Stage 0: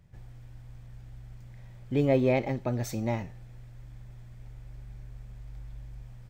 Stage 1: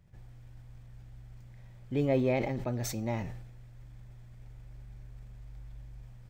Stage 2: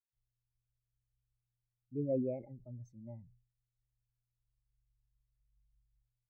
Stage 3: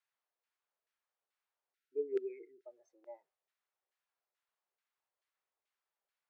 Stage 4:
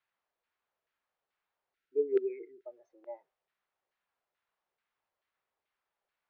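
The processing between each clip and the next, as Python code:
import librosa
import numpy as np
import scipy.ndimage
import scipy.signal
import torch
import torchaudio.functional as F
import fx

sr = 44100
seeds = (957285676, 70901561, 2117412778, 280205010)

y1 = fx.sustainer(x, sr, db_per_s=48.0)
y1 = F.gain(torch.from_numpy(y1), -4.0).numpy()
y2 = fx.spectral_expand(y1, sr, expansion=2.5)
y2 = F.gain(torch.from_numpy(y2), -6.5).numpy()
y3 = fx.filter_lfo_bandpass(y2, sr, shape='saw_down', hz=2.3, low_hz=550.0, high_hz=1900.0, q=0.96)
y3 = scipy.signal.sosfilt(scipy.signal.ellip(4, 1.0, 40, 360.0, 'highpass', fs=sr, output='sos'), y3)
y3 = fx.spec_erase(y3, sr, start_s=1.75, length_s=0.9, low_hz=490.0, high_hz=1300.0)
y3 = F.gain(torch.from_numpy(y3), 13.0).numpy()
y4 = fx.air_absorb(y3, sr, metres=230.0)
y4 = F.gain(torch.from_numpy(y4), 7.5).numpy()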